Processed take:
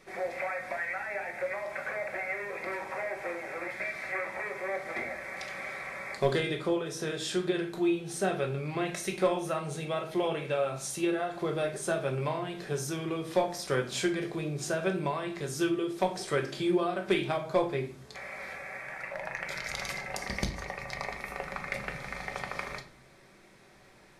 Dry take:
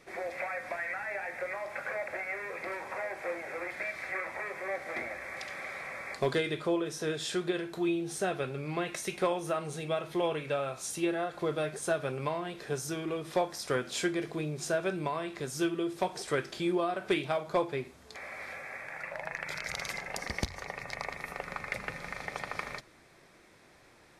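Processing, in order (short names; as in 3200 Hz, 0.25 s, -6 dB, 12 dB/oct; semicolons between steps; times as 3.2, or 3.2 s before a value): shoebox room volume 350 m³, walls furnished, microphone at 1.1 m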